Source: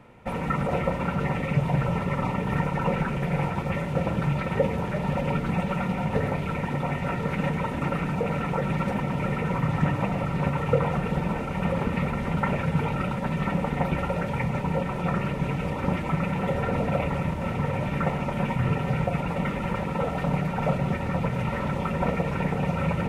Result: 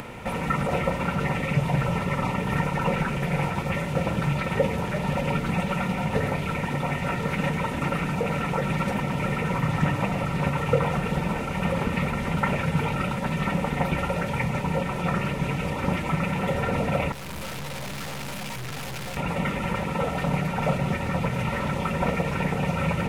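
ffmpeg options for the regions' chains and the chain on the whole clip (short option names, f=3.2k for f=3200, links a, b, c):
-filter_complex "[0:a]asettb=1/sr,asplit=3[a][b][c];[a]atrim=end=17.124[d];[b]atrim=start=17.12:end=19.17,asetpts=PTS-STARTPTS,afade=t=in:d=0.004:c=qsin,afade=t=out:st=2.046:d=0.004:c=qsin,aemphasis=mode=production:type=50kf,asplit=2[e][f];[f]adelay=15,volume=-4.5dB[g];[e][g]amix=inputs=2:normalize=0,atrim=end_sample=90405,aeval=exprs='(tanh(89.1*val(0)+0.8)-tanh(0.8))/89.1':c=same[h];[c]atrim=start=19.166[i];[d][h]acrossfade=d=0.004:c1=hsin:c2=qsin[j];[j][i]acrossfade=d=0.004:c1=qsin:c2=hsin,highshelf=f=2.4k:g=8.5,acompressor=mode=upward:threshold=-27dB:ratio=2.5"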